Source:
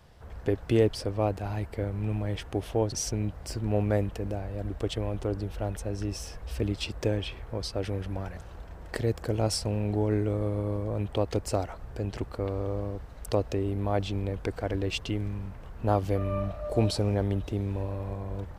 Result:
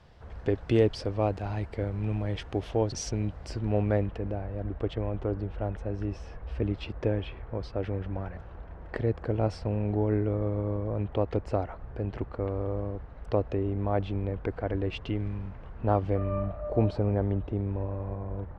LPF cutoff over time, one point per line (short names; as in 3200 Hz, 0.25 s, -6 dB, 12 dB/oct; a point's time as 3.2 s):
3.31 s 5200 Hz
4.47 s 2100 Hz
14.92 s 2100 Hz
15.33 s 3400 Hz
16.58 s 1600 Hz